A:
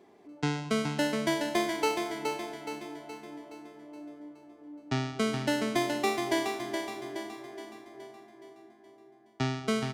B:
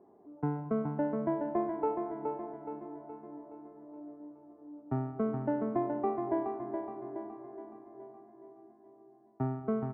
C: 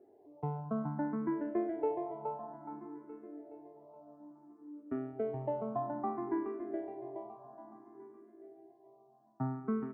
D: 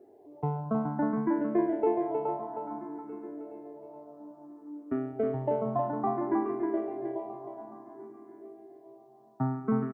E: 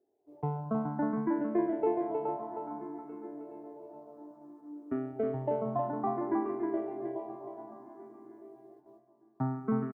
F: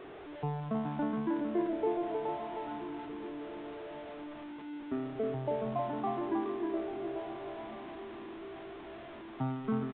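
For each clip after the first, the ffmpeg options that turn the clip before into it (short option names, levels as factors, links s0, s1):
-af "lowpass=f=1100:w=0.5412,lowpass=f=1100:w=1.3066,volume=0.794"
-filter_complex "[0:a]equalizer=f=66:w=1.7:g=-9,asplit=2[s0][s1];[s1]afreqshift=0.59[s2];[s0][s2]amix=inputs=2:normalize=1"
-af "aecho=1:1:314:0.531,volume=2"
-filter_complex "[0:a]agate=range=0.126:threshold=0.00282:ratio=16:detection=peak,asplit=2[s0][s1];[s1]adelay=965,lowpass=f=1900:p=1,volume=0.0841,asplit=2[s2][s3];[s3]adelay=965,lowpass=f=1900:p=1,volume=0.44,asplit=2[s4][s5];[s5]adelay=965,lowpass=f=1900:p=1,volume=0.44[s6];[s0][s2][s4][s6]amix=inputs=4:normalize=0,volume=0.75"
-af "aeval=exprs='val(0)+0.5*0.0126*sgn(val(0))':c=same,aresample=8000,aresample=44100,volume=0.668"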